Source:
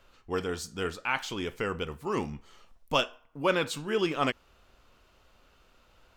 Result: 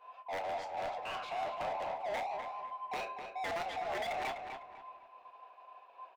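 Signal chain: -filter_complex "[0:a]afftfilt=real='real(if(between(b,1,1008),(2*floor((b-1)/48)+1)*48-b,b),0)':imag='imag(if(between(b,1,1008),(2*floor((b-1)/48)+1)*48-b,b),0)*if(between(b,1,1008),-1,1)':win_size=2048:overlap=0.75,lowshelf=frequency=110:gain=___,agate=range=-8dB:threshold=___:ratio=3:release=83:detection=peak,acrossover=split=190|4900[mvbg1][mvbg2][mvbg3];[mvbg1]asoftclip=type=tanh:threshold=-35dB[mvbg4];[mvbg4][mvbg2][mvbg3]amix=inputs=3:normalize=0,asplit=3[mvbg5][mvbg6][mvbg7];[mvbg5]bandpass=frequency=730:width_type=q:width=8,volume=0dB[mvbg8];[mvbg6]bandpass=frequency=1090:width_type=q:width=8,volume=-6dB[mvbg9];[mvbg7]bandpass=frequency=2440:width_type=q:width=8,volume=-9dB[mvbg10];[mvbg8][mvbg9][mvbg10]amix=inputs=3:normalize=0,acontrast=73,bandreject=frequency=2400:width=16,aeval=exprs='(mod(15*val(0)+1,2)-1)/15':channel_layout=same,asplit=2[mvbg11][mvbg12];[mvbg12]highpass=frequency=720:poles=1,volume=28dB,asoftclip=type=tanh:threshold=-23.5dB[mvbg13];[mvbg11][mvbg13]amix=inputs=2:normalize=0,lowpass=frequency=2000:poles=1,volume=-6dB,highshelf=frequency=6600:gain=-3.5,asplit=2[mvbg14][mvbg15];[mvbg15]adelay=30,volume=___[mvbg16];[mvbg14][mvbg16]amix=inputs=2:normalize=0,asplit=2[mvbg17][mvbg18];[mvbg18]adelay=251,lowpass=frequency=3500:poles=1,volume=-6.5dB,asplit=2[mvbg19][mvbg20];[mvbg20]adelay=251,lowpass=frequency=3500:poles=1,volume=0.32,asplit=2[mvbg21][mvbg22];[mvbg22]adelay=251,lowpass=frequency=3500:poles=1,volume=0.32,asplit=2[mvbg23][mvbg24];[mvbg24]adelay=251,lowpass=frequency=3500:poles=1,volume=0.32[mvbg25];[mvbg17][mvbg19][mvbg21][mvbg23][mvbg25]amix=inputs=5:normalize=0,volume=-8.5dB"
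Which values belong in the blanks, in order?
-4.5, -59dB, -12dB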